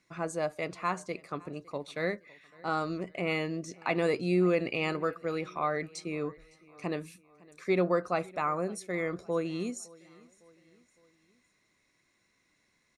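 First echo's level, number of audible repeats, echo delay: -23.5 dB, 2, 559 ms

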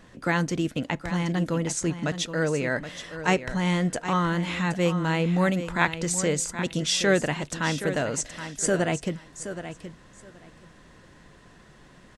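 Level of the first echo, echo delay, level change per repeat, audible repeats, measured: -11.0 dB, 773 ms, -15.5 dB, 2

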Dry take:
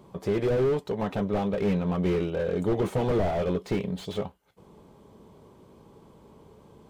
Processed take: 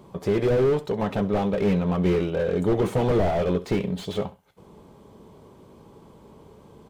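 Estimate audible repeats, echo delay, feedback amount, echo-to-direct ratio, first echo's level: 2, 67 ms, 22%, -17.5 dB, -17.5 dB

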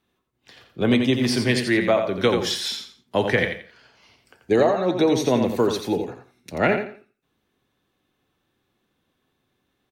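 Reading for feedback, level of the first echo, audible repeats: 25%, -7.0 dB, 3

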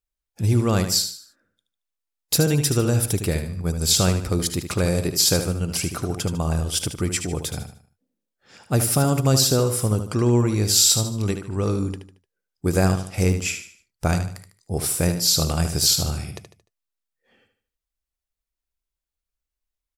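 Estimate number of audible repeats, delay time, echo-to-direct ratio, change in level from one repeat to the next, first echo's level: 4, 75 ms, -8.0 dB, -8.5 dB, -8.5 dB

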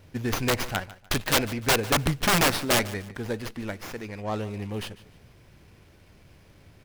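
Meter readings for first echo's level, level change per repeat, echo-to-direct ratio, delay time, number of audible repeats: -18.0 dB, -10.0 dB, -17.5 dB, 148 ms, 2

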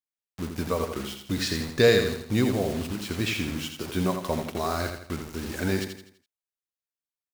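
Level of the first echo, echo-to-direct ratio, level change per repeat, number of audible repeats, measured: -6.5 dB, -5.5 dB, -7.5 dB, 4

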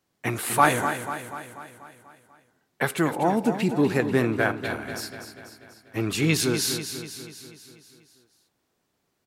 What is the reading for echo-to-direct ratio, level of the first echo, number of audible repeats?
-8.0 dB, -9.5 dB, 6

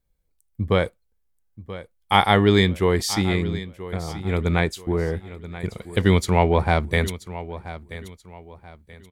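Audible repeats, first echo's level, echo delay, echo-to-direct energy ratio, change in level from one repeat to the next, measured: 3, -15.0 dB, 981 ms, -14.5 dB, -9.5 dB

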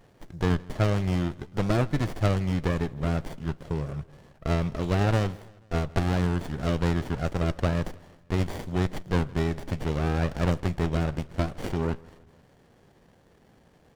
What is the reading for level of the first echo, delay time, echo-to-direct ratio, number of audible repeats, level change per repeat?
-23.5 dB, 161 ms, -22.0 dB, 3, -5.5 dB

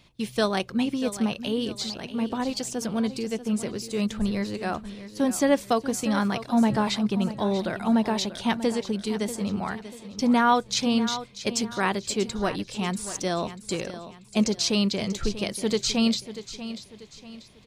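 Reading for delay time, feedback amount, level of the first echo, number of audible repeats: 639 ms, 38%, -13.0 dB, 3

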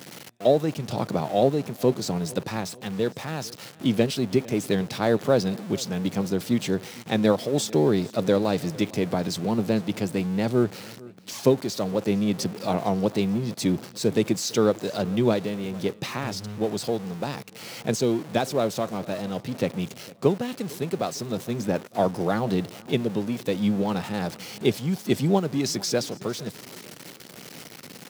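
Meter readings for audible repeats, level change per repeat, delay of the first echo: 2, -7.0 dB, 453 ms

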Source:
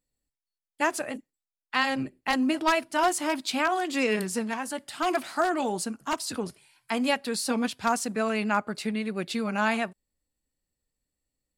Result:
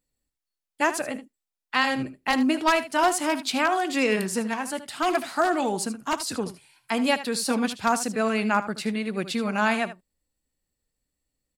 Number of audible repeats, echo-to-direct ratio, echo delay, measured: 1, -13.5 dB, 77 ms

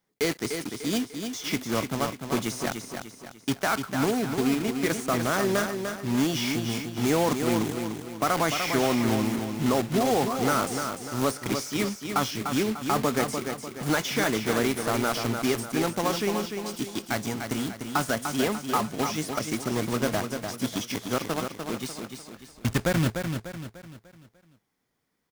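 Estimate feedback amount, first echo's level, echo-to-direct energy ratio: 42%, -6.5 dB, -5.5 dB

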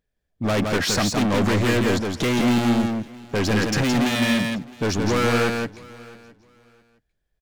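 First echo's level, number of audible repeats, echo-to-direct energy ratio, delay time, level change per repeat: -4.0 dB, 3, -4.0 dB, 168 ms, no regular repeats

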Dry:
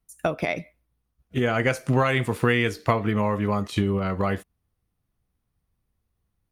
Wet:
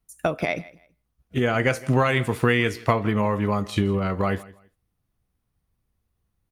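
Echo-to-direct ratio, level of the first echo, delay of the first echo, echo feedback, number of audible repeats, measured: -21.0 dB, -21.0 dB, 164 ms, 24%, 2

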